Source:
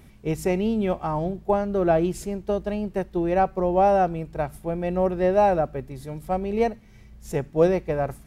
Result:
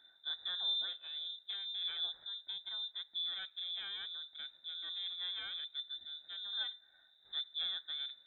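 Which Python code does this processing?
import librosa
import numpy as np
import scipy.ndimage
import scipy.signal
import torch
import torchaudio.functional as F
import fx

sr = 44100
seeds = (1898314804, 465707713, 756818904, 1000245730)

y = fx.diode_clip(x, sr, knee_db=-18.5)
y = fx.vowel_filter(y, sr, vowel='i')
y = fx.freq_invert(y, sr, carrier_hz=3800)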